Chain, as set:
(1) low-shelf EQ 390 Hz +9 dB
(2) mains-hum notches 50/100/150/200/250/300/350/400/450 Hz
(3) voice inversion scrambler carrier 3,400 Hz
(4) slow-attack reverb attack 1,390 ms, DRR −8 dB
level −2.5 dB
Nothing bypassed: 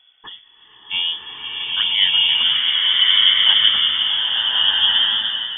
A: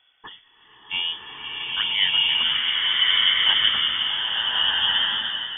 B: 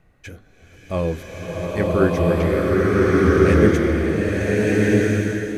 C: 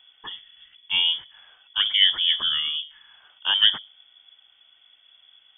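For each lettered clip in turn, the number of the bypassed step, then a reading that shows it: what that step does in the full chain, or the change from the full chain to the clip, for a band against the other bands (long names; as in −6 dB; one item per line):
1, change in integrated loudness −5.0 LU
3, change in integrated loudness −4.5 LU
4, change in momentary loudness spread +10 LU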